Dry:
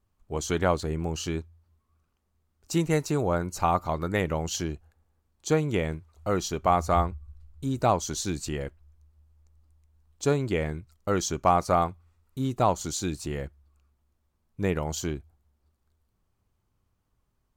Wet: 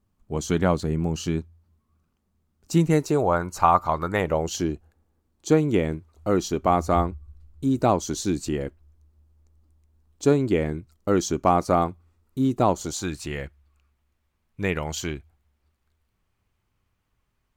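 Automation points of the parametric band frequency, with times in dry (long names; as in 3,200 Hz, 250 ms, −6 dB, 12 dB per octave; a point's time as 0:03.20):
parametric band +8.5 dB 1.4 octaves
0:02.88 200 Hz
0:03.36 1,100 Hz
0:04.13 1,100 Hz
0:04.58 290 Hz
0:12.72 290 Hz
0:13.21 2,300 Hz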